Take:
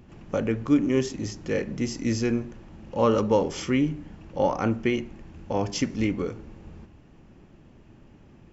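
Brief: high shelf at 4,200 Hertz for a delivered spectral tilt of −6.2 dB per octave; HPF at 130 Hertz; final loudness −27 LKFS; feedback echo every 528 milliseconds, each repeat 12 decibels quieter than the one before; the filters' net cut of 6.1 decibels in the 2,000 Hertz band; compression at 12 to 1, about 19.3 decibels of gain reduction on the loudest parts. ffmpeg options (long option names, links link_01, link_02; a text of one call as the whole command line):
ffmpeg -i in.wav -af "highpass=130,equalizer=frequency=2000:width_type=o:gain=-5.5,highshelf=frequency=4200:gain=-8,acompressor=threshold=-36dB:ratio=12,aecho=1:1:528|1056|1584:0.251|0.0628|0.0157,volume=15dB" out.wav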